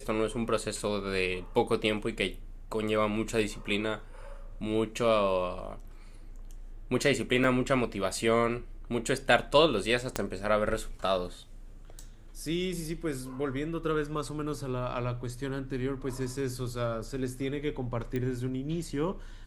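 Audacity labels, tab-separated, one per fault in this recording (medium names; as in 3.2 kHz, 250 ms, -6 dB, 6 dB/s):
7.440000	7.440000	dropout 2.4 ms
10.160000	10.160000	pop -13 dBFS
18.160000	18.160000	pop -21 dBFS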